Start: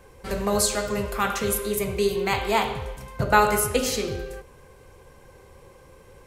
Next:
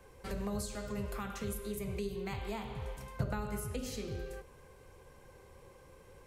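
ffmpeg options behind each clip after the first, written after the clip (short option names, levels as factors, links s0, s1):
-filter_complex "[0:a]acrossover=split=230[s0][s1];[s1]acompressor=threshold=0.02:ratio=6[s2];[s0][s2]amix=inputs=2:normalize=0,volume=0.447"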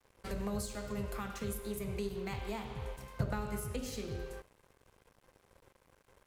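-af "aeval=exprs='sgn(val(0))*max(abs(val(0))-0.00188,0)':c=same,volume=1.12"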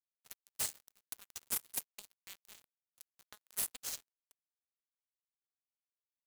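-af "aderivative,aeval=exprs='(mod(59.6*val(0)+1,2)-1)/59.6':c=same,acrusher=bits=6:mix=0:aa=0.5,volume=2.51"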